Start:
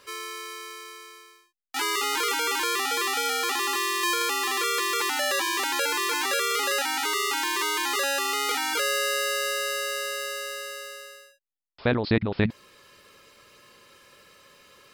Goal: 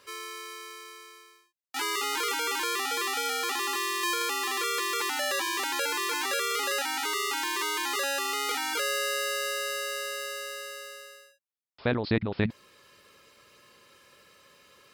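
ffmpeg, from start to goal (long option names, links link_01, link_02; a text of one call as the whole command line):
ffmpeg -i in.wav -af "highpass=41,volume=-3.5dB" out.wav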